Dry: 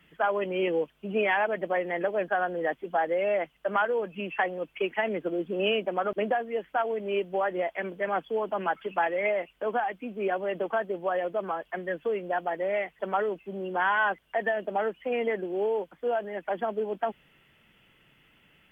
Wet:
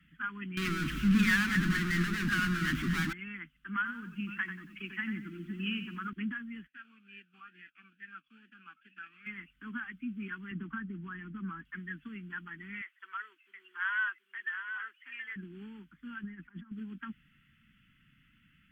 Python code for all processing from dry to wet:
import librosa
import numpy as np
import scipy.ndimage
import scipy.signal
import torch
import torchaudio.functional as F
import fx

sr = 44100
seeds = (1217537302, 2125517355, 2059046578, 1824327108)

y = fx.chain(x, sr, fx.power_curve(exponent=0.35),
    fx.echo_alternate(ms=115, hz=960.0, feedback_pct=51, wet_db=-3.5), at=(0.57, 3.13))
y = fx.chain(y, sr, fx.echo_single(ms=509, db=-20.5),
    fx.echo_crushed(ms=92, feedback_pct=35, bits=9, wet_db=-9.0), at=(3.76, 6.1))
y = fx.envelope_flatten(y, sr, power=0.6, at=(6.66, 9.26), fade=0.02)
y = fx.vowel_sweep(y, sr, vowels='a-e', hz=2.3, at=(6.66, 9.26), fade=0.02)
y = fx.chain(y, sr, fx.lowpass(hz=1900.0, slope=6),
    fx.low_shelf(hz=280.0, db=7.5),
    fx.band_squash(depth_pct=40), at=(10.51, 11.65))
y = fx.chain(y, sr, fx.bessel_highpass(hz=720.0, order=8),
    fx.echo_single(ms=725, db=-8.0), at=(12.81, 15.36))
y = fx.chain(y, sr, fx.over_compress(threshold_db=-39.0, ratio=-1.0),
    fx.high_shelf(hz=2200.0, db=-10.0), at=(16.23, 16.72))
y = scipy.signal.sosfilt(scipy.signal.cheby1(3, 1.0, [250.0, 1400.0], 'bandstop', fs=sr, output='sos'), y)
y = fx.high_shelf(y, sr, hz=2000.0, db=-11.5)
y = y * librosa.db_to_amplitude(1.0)